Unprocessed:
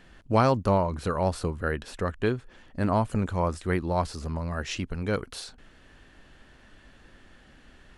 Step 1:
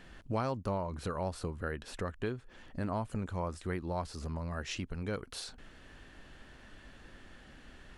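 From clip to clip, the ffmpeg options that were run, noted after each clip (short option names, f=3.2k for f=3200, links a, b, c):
-af "acompressor=threshold=-40dB:ratio=2"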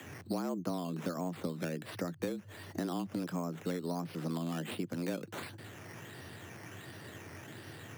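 -filter_complex "[0:a]acrusher=samples=9:mix=1:aa=0.000001:lfo=1:lforange=5.4:lforate=1.4,acrossover=split=81|380[a][b][c];[a]acompressor=threshold=-58dB:ratio=4[d];[b]acompressor=threshold=-41dB:ratio=4[e];[c]acompressor=threshold=-49dB:ratio=4[f];[d][e][f]amix=inputs=3:normalize=0,afreqshift=84,volume=6.5dB"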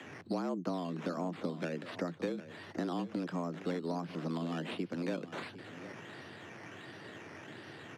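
-filter_complex "[0:a]acrossover=split=790[a][b];[b]crystalizer=i=0.5:c=0[c];[a][c]amix=inputs=2:normalize=0,highpass=170,lowpass=4k,aecho=1:1:756:0.2,volume=1dB"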